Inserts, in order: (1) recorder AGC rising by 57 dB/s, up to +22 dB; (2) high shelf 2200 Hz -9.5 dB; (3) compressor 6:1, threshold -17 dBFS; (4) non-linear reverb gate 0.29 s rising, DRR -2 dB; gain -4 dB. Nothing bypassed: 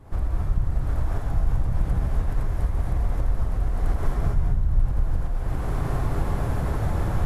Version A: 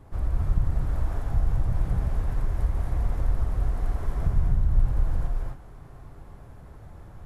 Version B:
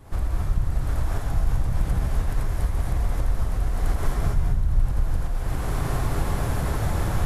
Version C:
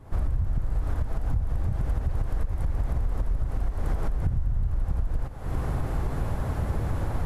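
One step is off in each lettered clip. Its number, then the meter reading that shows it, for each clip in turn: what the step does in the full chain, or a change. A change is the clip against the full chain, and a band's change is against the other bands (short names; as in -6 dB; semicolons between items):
1, crest factor change +2.5 dB; 2, 2 kHz band +3.5 dB; 4, loudness change -3.0 LU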